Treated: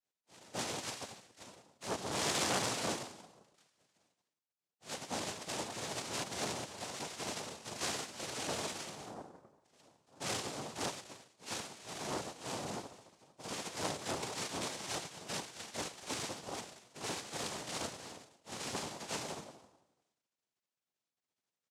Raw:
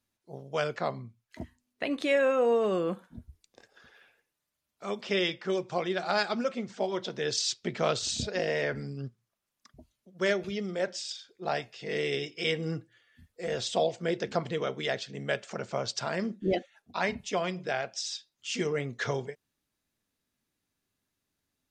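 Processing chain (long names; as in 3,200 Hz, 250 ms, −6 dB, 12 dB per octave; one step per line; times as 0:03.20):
samples in bit-reversed order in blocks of 16 samples
double-tracking delay 38 ms −4.5 dB
feedback delay network reverb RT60 0.78 s, low-frequency decay 1.35×, high-frequency decay 1×, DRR 1.5 dB
gate on every frequency bin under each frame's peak −20 dB weak
Chebyshev low-pass filter 1,600 Hz, order 2
low-shelf EQ 410 Hz +10 dB
cochlear-implant simulation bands 2
saturating transformer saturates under 1,900 Hz
level +4.5 dB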